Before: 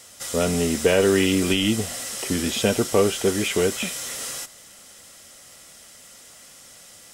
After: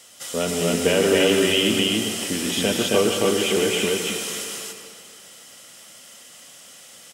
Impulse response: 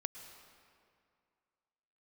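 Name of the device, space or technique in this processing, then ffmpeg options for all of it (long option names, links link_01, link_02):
stadium PA: -filter_complex "[0:a]highpass=140,equalizer=frequency=3000:width_type=o:width=0.33:gain=6,aecho=1:1:151.6|271.1:0.355|0.891[link_01];[1:a]atrim=start_sample=2205[link_02];[link_01][link_02]afir=irnorm=-1:irlink=0"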